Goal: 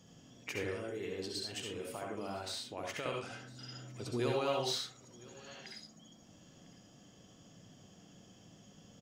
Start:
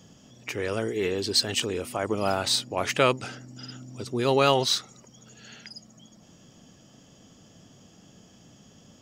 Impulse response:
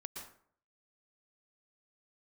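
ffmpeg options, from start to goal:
-filter_complex "[0:a]asettb=1/sr,asplit=3[link_01][link_02][link_03];[link_01]atrim=end=0.624[link_04];[link_02]atrim=start=0.62:end=3.06,asetpts=PTS-STARTPTS,afade=type=in:duration=0.004:curve=qsin,afade=type=out:start_time=2.436:duration=0.004:curve=qsin,acompressor=threshold=-33dB:ratio=5[link_05];[link_03]atrim=start=3.056[link_06];[link_04][link_05]acrossfade=duration=0.004:curve1=hsin:curve2=qsin[link_07];[link_07][link_06]acrossfade=duration=0.004:curve1=qsin:curve2=hsin,alimiter=limit=-17.5dB:level=0:latency=1:release=387,aecho=1:1:1005:0.0794[link_08];[1:a]atrim=start_sample=2205,asetrate=79380,aresample=44100[link_09];[link_08][link_09]afir=irnorm=-1:irlink=0,volume=2.5dB"

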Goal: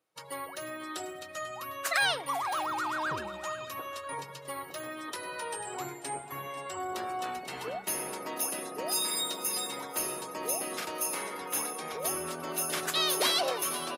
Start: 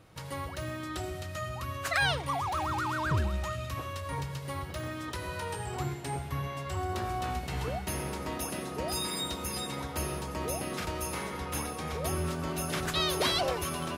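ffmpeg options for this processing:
ffmpeg -i in.wav -filter_complex "[0:a]highpass=330,highshelf=frequency=6700:gain=9.5,afftdn=noise_reduction=22:noise_floor=-46,asplit=2[link_01][link_02];[link_02]aecho=0:1:492|984|1476:0.15|0.0464|0.0144[link_03];[link_01][link_03]amix=inputs=2:normalize=0" out.wav

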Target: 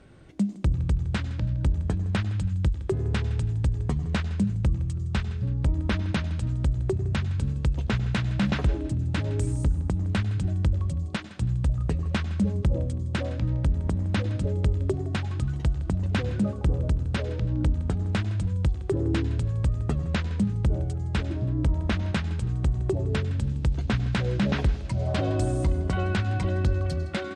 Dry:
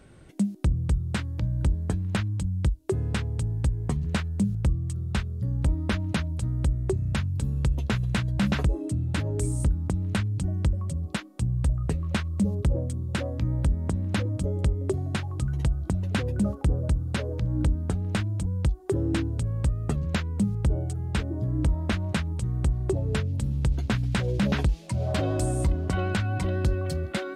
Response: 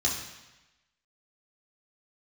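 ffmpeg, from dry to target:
-filter_complex "[0:a]lowpass=6300,aecho=1:1:163|326|489:0.126|0.0491|0.0191,asplit=2[link_01][link_02];[1:a]atrim=start_sample=2205,afade=type=out:start_time=0.29:duration=0.01,atrim=end_sample=13230,adelay=97[link_03];[link_02][link_03]afir=irnorm=-1:irlink=0,volume=-24dB[link_04];[link_01][link_04]amix=inputs=2:normalize=0"

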